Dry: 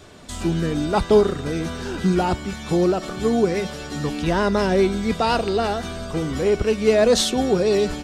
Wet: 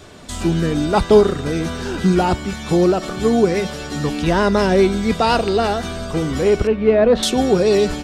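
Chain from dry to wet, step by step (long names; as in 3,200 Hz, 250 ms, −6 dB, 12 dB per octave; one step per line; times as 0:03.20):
0:06.67–0:07.23: high-frequency loss of the air 490 metres
level +4 dB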